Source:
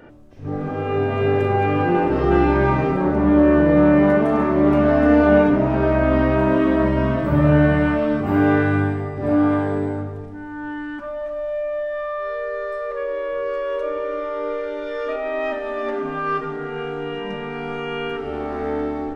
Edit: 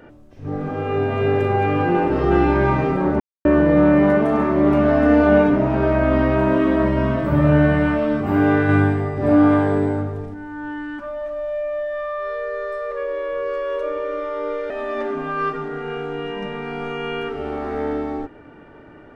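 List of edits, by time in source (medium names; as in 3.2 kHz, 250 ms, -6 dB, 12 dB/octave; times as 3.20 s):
3.20–3.45 s: mute
8.69–10.34 s: gain +3.5 dB
14.70–15.58 s: delete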